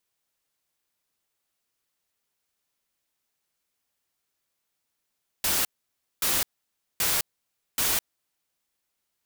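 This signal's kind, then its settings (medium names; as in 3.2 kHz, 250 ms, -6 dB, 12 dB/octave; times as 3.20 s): noise bursts white, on 0.21 s, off 0.57 s, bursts 4, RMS -24.5 dBFS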